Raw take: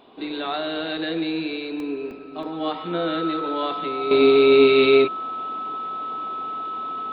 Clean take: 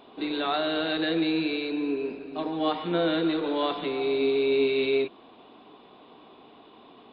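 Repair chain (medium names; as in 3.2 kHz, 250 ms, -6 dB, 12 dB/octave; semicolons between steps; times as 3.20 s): band-stop 1.3 kHz, Q 30; interpolate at 1.80/2.11/2.43 s, 1 ms; gain correction -9.5 dB, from 4.11 s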